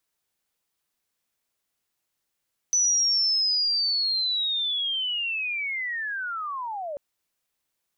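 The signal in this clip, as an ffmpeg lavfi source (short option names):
-f lavfi -i "aevalsrc='pow(10,(-18.5-11.5*t/4.24)/20)*sin(2*PI*(6000*t-5450*t*t/(2*4.24)))':d=4.24:s=44100"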